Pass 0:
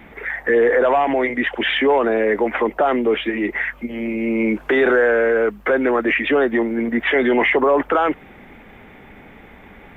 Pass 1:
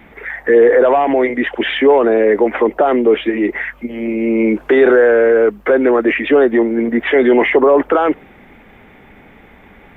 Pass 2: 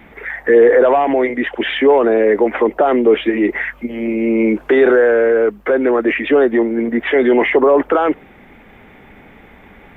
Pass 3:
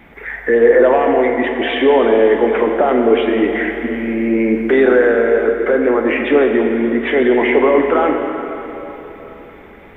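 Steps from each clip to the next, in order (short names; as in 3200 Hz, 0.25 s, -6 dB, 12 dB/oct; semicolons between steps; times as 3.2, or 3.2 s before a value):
dynamic EQ 390 Hz, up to +7 dB, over -30 dBFS, Q 0.78
vocal rider within 4 dB 2 s; gain -1.5 dB
plate-style reverb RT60 3.7 s, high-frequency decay 0.85×, DRR 2.5 dB; gain -1.5 dB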